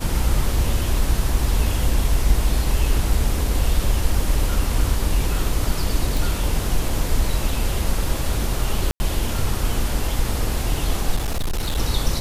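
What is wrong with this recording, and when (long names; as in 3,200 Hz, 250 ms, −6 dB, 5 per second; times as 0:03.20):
0:06.17: click
0:08.91–0:09.00: drop-out 90 ms
0:11.15–0:11.78: clipping −19 dBFS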